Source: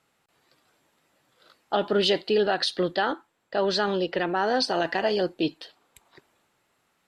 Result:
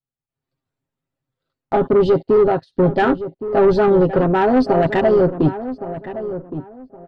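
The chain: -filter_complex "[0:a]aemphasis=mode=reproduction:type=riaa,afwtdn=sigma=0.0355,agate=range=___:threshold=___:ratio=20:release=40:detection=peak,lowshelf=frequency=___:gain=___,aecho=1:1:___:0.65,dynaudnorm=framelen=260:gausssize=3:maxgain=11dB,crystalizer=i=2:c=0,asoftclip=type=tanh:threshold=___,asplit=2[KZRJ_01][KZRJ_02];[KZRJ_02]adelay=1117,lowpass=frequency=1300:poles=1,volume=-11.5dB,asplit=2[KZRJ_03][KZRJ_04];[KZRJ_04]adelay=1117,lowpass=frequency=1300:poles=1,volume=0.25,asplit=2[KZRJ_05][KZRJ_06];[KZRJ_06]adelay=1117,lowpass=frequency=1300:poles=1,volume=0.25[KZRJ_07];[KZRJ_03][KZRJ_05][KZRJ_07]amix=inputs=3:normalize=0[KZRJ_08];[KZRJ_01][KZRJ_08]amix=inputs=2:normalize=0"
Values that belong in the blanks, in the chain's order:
-18dB, -47dB, 190, 7.5, 7.5, -8dB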